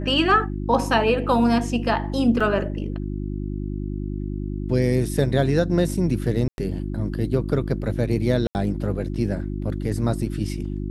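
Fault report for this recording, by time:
hum 50 Hz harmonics 7 -28 dBFS
2.40–2.41 s: dropout 5.1 ms
6.48–6.58 s: dropout 101 ms
8.47–8.55 s: dropout 79 ms

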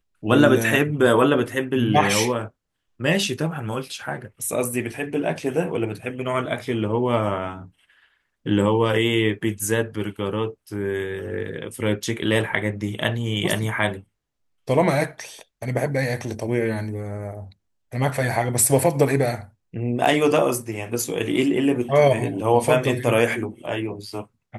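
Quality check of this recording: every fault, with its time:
20.05–20.06 s: dropout 6.7 ms

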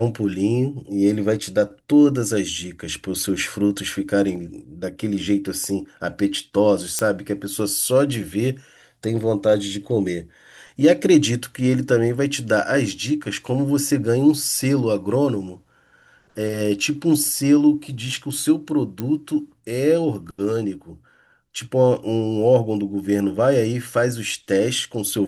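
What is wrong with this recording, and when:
6.99 s: pop -6 dBFS
19.00 s: pop -14 dBFS

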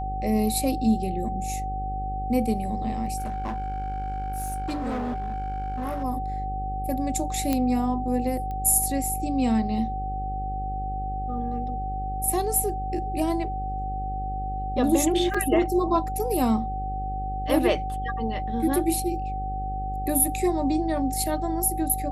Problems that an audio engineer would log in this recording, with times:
buzz 50 Hz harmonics 11 -32 dBFS
whine 760 Hz -30 dBFS
3.17–6.04 s: clipped -25.5 dBFS
7.53 s: pop -10 dBFS
8.51 s: pop -23 dBFS
15.34 s: dropout 4.9 ms

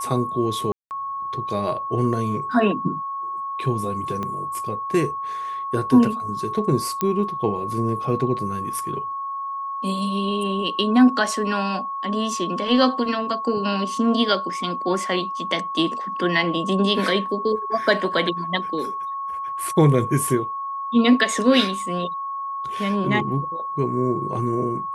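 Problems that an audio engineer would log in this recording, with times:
whine 1.1 kHz -26 dBFS
0.72–0.91 s: dropout 189 ms
4.23 s: pop -16 dBFS
7.01 s: pop -9 dBFS

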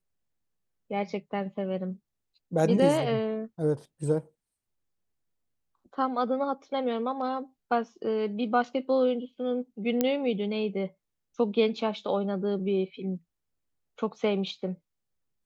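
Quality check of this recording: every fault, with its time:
10.01 s: pop -11 dBFS

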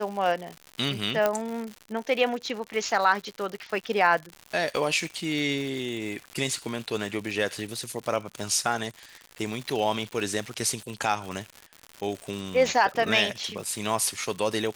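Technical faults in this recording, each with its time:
crackle 160 per s -32 dBFS
1.26 s: pop -10 dBFS

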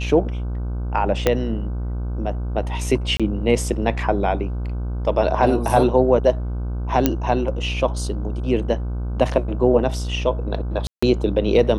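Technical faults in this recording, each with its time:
buzz 60 Hz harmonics 26 -25 dBFS
1.27 s: pop -3 dBFS
3.17–3.20 s: dropout 26 ms
7.06 s: pop -2 dBFS
10.87–11.03 s: dropout 155 ms

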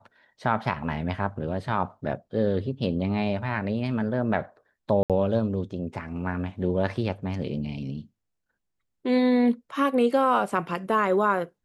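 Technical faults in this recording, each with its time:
5.03–5.10 s: dropout 67 ms

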